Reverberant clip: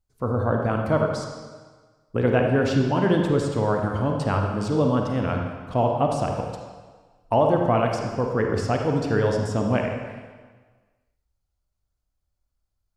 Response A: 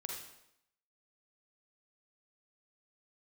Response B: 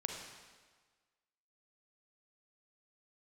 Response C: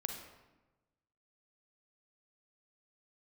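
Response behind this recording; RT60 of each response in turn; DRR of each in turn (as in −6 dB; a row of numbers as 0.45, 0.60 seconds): B; 0.80, 1.5, 1.1 seconds; −0.5, 1.5, 3.5 decibels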